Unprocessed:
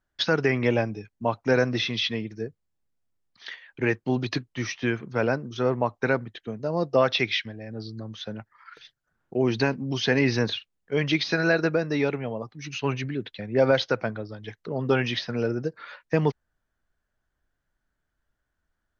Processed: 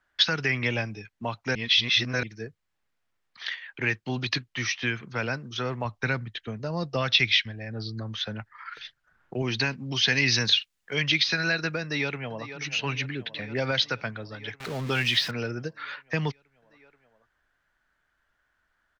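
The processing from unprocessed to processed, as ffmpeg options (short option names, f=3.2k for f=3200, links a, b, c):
-filter_complex "[0:a]asettb=1/sr,asplit=3[a][b][c];[a]atrim=end=5.854[d];[b]atrim=start=5.85:end=9.42,asetpts=PTS-STARTPTS,afade=t=in:d=0.004:c=qsin,afade=t=out:st=3.566:d=0.004:c=qsin,lowshelf=f=120:g=10.5[e];[c]atrim=start=9.416[f];[d][e]acrossfade=d=0.004:c1=hsin:c2=qsin[g];[g][f]acrossfade=d=0.004:c1=qsin:c2=hsin,asettb=1/sr,asplit=3[h][i][j];[h]atrim=end=10.084[k];[i]atrim=start=10.08:end=11.02,asetpts=PTS-STARTPTS,afade=t=in:d=0.004:c=qsin,afade=t=out:st=0.936:d=0.004:c=qsin,highshelf=f=4.8k:g=12[l];[j]atrim=start=11.016[m];[k][l]acrossfade=d=0.004:c1=hsin:c2=qsin[n];[n][m]acrossfade=d=0.004:c1=qsin:c2=hsin,asplit=2[o][p];[p]afade=t=in:st=11.82:d=0.01,afade=t=out:st=12.5:d=0.01,aecho=0:1:480|960|1440|1920|2400|2880|3360|3840|4320|4800:0.16788|0.12591|0.0944327|0.0708245|0.0531184|0.0398388|0.0298791|0.0224093|0.016807|0.0126052[q];[o][q]amix=inputs=2:normalize=0,asettb=1/sr,asplit=3[r][s][t];[r]atrim=end=14.604[u];[s]atrim=start=14.6:end=15.31,asetpts=PTS-STARTPTS,afade=t=in:d=0.004:c=qsin,afade=t=out:st=0.706:d=0.004:c=qsin,aeval=exprs='val(0)+0.5*0.0158*sgn(val(0))':c=same[v];[t]atrim=start=15.306[w];[u][v]acrossfade=d=0.004:c1=hsin:c2=qsin[x];[x][w]acrossfade=d=0.004:c1=qsin:c2=hsin,asplit=3[y][z][aa];[y]atrim=end=1.552[ab];[z]atrim=start=1.548:end=2.232,asetpts=PTS-STARTPTS,areverse[ac];[aa]atrim=start=2.228[ad];[ab][ac]acrossfade=d=0.004:c1=hsin:c2=hsin[ae];[ae][ad]acrossfade=d=0.004:c1=hsin:c2=hsin,equalizer=f=1.8k:w=0.36:g=15,acrossover=split=200|3000[af][ag][ah];[ag]acompressor=threshold=-39dB:ratio=2[ai];[af][ai][ah]amix=inputs=3:normalize=0,volume=-2.5dB"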